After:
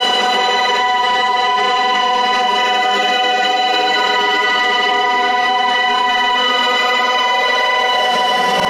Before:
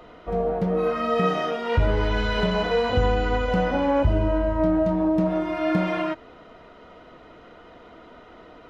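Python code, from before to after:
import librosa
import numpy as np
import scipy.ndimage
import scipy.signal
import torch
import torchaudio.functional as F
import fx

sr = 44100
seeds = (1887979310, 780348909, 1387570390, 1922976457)

p1 = scipy.signal.sosfilt(scipy.signal.butter(4, 310.0, 'highpass', fs=sr, output='sos'), x)
p2 = fx.tilt_eq(p1, sr, slope=3.5)
p3 = p2 + 0.73 * np.pad(p2, (int(5.1 * sr / 1000.0), 0))[:len(p2)]
p4 = 10.0 ** (-17.0 / 20.0) * np.tanh(p3 / 10.0 ** (-17.0 / 20.0))
p5 = fx.paulstretch(p4, sr, seeds[0], factor=15.0, window_s=0.1, from_s=2.98)
p6 = fx.granulator(p5, sr, seeds[1], grain_ms=100.0, per_s=20.0, spray_ms=100.0, spread_st=0)
p7 = p6 + fx.echo_alternate(p6, sr, ms=309, hz=1500.0, feedback_pct=59, wet_db=-11, dry=0)
p8 = fx.env_flatten(p7, sr, amount_pct=100)
y = p8 * 10.0 ** (6.5 / 20.0)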